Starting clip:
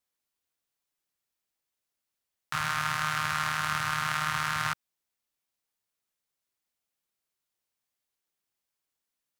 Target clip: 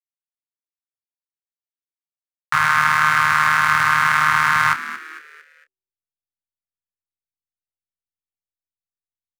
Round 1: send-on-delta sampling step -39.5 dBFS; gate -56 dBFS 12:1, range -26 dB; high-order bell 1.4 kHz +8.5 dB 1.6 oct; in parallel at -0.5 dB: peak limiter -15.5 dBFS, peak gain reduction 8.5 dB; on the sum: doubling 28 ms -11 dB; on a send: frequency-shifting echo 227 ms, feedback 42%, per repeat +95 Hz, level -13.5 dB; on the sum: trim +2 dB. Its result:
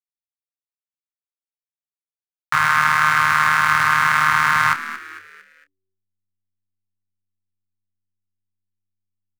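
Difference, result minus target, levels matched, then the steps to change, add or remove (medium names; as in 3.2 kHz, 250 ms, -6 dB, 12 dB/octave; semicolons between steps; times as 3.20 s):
send-on-delta sampling: distortion +8 dB
change: send-on-delta sampling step -46.5 dBFS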